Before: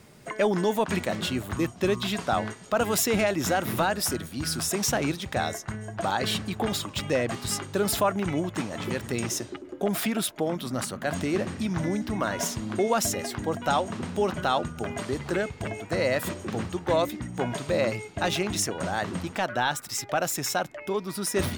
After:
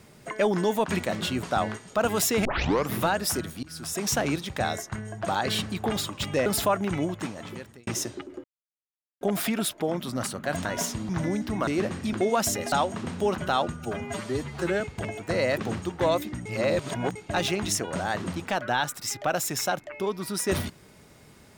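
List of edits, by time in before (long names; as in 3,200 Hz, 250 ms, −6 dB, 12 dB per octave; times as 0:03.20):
0:01.43–0:02.19: remove
0:03.21: tape start 0.48 s
0:04.39–0:04.89: fade in, from −22 dB
0:07.22–0:07.81: remove
0:08.37–0:09.22: fade out
0:09.79: splice in silence 0.77 s
0:11.23–0:11.69: swap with 0:12.27–0:12.71
0:13.30–0:13.68: remove
0:14.76–0:15.43: time-stretch 1.5×
0:16.20–0:16.45: remove
0:17.33–0:18.03: reverse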